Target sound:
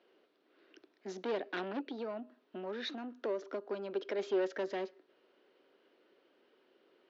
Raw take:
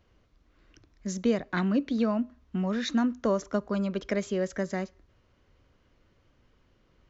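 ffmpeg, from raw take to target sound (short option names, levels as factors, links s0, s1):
-filter_complex "[0:a]asplit=3[s0][s1][s2];[s0]afade=t=out:st=1.8:d=0.02[s3];[s1]acompressor=threshold=0.0282:ratio=6,afade=t=in:st=1.8:d=0.02,afade=t=out:st=4.18:d=0.02[s4];[s2]afade=t=in:st=4.18:d=0.02[s5];[s3][s4][s5]amix=inputs=3:normalize=0,asoftclip=type=tanh:threshold=0.0282,highpass=f=310:w=0.5412,highpass=f=310:w=1.3066,equalizer=f=390:t=q:w=4:g=7,equalizer=f=1100:t=q:w=4:g=-6,equalizer=f=2100:t=q:w=4:g=-4,lowpass=f=4300:w=0.5412,lowpass=f=4300:w=1.3066,volume=1.12"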